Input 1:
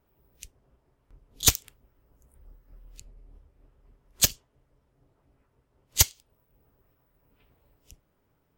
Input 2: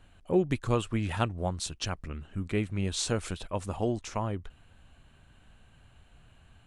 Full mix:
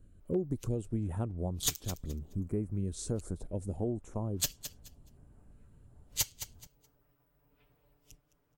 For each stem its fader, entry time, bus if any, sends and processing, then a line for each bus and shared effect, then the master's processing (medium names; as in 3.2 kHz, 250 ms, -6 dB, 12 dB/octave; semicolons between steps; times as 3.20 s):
-6.5 dB, 0.20 s, no send, echo send -17 dB, comb 6.8 ms, depth 89%
+0.5 dB, 0.00 s, no send, no echo send, FFT filter 410 Hz 0 dB, 2.8 kHz -23 dB, 8.9 kHz -5 dB; step-sequenced notch 2.9 Hz 820–6500 Hz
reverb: none
echo: feedback delay 212 ms, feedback 20%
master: compression 2.5:1, threshold -31 dBFS, peak gain reduction 9.5 dB